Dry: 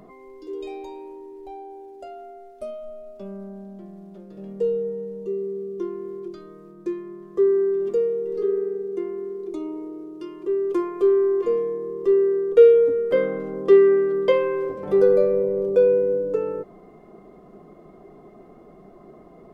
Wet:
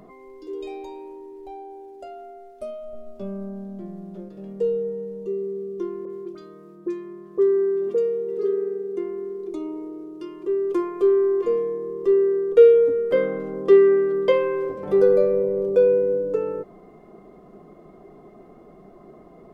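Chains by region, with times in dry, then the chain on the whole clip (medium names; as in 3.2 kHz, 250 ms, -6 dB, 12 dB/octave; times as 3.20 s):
2.93–4.29 s: bass shelf 450 Hz +6.5 dB + doubling 17 ms -6.5 dB
6.05–8.97 s: high-pass 97 Hz 6 dB/octave + phase dispersion highs, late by 47 ms, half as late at 2 kHz
whole clip: none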